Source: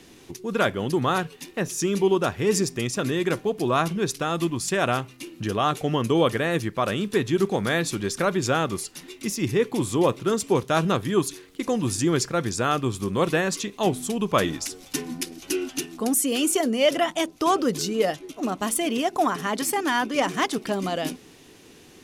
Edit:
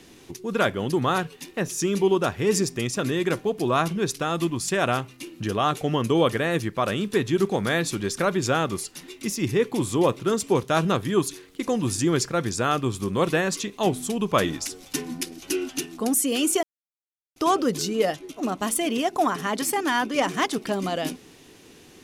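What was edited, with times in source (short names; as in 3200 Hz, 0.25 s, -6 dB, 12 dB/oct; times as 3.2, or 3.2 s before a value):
16.63–17.36 mute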